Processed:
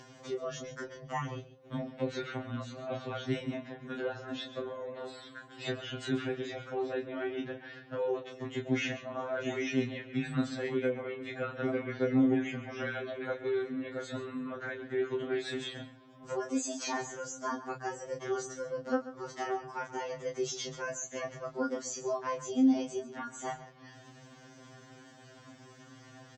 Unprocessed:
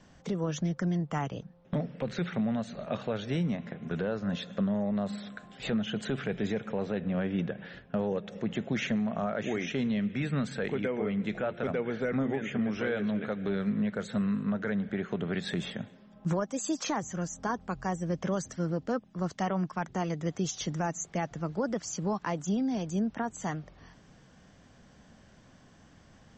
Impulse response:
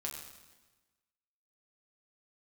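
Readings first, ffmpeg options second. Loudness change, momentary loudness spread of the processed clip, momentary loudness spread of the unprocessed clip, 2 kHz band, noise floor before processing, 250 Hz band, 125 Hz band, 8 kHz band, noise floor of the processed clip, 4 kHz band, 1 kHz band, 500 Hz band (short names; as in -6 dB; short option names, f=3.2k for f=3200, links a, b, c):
-3.0 dB, 16 LU, 6 LU, -1.0 dB, -58 dBFS, -4.0 dB, -8.5 dB, -1.5 dB, -55 dBFS, -1.0 dB, -2.5 dB, -1.0 dB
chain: -filter_complex "[0:a]highpass=130,acompressor=mode=upward:threshold=-43dB:ratio=2.5,asplit=2[a][b];[b]adelay=26,volume=-6dB[c];[a][c]amix=inputs=2:normalize=0,aecho=1:1:136:0.188,afftfilt=real='re*2.45*eq(mod(b,6),0)':imag='im*2.45*eq(mod(b,6),0)':win_size=2048:overlap=0.75"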